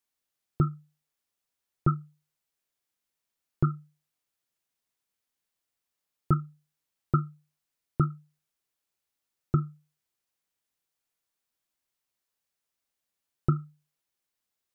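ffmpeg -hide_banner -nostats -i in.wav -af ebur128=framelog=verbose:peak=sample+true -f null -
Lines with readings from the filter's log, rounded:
Integrated loudness:
  I:         -30.7 LUFS
  Threshold: -42.2 LUFS
Loudness range:
  LRA:         5.1 LU
  Threshold: -56.7 LUFS
  LRA low:   -39.2 LUFS
  LRA high:  -34.1 LUFS
Sample peak:
  Peak:      -11.8 dBFS
True peak:
  Peak:      -11.8 dBFS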